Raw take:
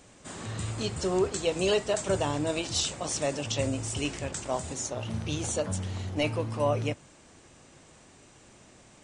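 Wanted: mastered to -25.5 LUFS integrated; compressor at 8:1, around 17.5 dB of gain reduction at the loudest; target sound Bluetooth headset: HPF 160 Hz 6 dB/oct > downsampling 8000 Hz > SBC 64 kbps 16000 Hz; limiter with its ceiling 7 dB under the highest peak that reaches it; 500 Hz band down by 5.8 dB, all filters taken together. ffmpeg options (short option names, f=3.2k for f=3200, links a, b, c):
-af "equalizer=f=500:t=o:g=-7,acompressor=threshold=-44dB:ratio=8,alimiter=level_in=15dB:limit=-24dB:level=0:latency=1,volume=-15dB,highpass=f=160:p=1,aresample=8000,aresample=44100,volume=27dB" -ar 16000 -c:a sbc -b:a 64k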